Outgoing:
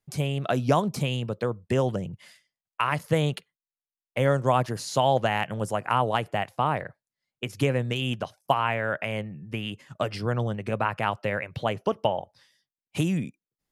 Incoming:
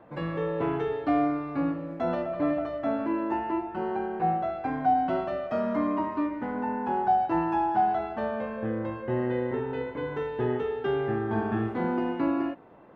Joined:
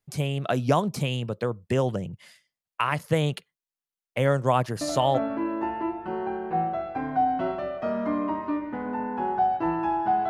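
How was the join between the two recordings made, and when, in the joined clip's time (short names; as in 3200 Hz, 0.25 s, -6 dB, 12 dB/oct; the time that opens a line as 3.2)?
outgoing
5 switch to incoming from 2.69 s, crossfade 0.38 s logarithmic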